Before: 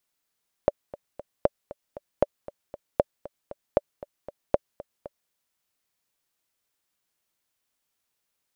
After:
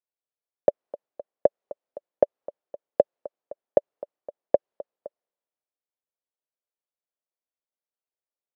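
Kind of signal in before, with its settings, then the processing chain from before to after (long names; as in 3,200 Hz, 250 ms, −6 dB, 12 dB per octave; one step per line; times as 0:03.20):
click track 233 BPM, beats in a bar 3, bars 6, 579 Hz, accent 18.5 dB −5.5 dBFS
in parallel at +2.5 dB: downward compressor, threshold −28 dBFS
on the sum: resonant band-pass 550 Hz, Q 1.7
multiband upward and downward expander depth 40%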